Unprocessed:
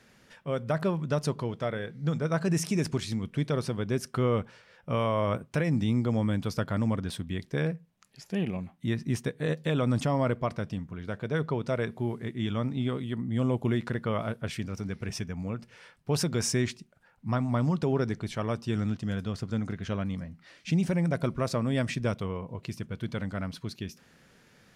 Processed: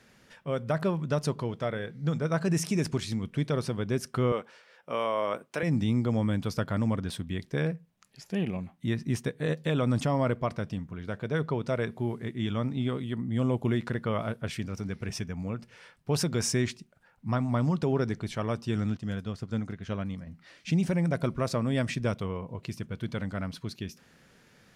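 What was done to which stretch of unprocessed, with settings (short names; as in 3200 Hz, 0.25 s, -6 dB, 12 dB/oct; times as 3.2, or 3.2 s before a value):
4.32–5.63 HPF 360 Hz
18.97–20.27 upward expander, over -39 dBFS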